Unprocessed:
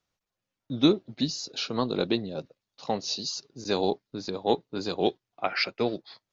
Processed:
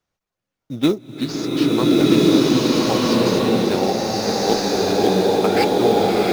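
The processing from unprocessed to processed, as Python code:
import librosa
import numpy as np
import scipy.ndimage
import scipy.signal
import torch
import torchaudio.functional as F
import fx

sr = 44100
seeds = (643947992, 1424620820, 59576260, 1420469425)

p1 = fx.sample_hold(x, sr, seeds[0], rate_hz=6000.0, jitter_pct=20)
p2 = x + (p1 * librosa.db_to_amplitude(-6.0))
y = fx.rev_bloom(p2, sr, seeds[1], attack_ms=1460, drr_db=-9.0)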